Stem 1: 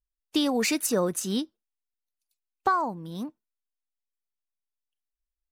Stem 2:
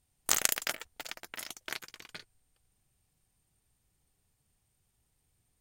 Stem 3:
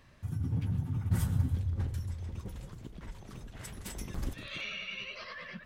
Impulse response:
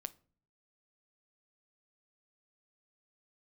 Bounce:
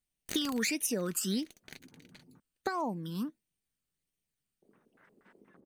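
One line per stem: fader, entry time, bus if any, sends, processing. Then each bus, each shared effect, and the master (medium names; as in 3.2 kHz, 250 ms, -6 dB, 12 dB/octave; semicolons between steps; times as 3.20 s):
+2.5 dB, 0.00 s, no send, phase shifter stages 12, 1.5 Hz, lowest notch 640–1500 Hz; tilt shelf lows -3.5 dB, about 630 Hz
-12.0 dB, 0.00 s, no send, comb filter that takes the minimum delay 0.48 ms; peaking EQ 3.1 kHz +11 dB 0.24 oct
-17.0 dB, 1.40 s, muted 2.40–4.62 s, no send, high-pass 240 Hz 12 dB/octave; LFO low-pass square 4.2 Hz 450–1600 Hz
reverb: none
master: resonant low shelf 140 Hz -6.5 dB, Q 1.5; compression 6:1, threshold -29 dBFS, peak gain reduction 10 dB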